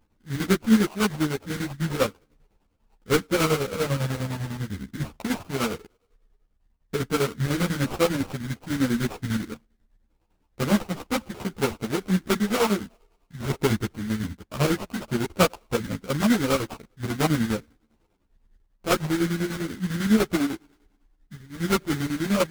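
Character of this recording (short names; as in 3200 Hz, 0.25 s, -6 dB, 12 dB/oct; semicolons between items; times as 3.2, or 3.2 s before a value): chopped level 10 Hz, depth 60%, duty 55%; aliases and images of a low sample rate 1800 Hz, jitter 20%; a shimmering, thickened sound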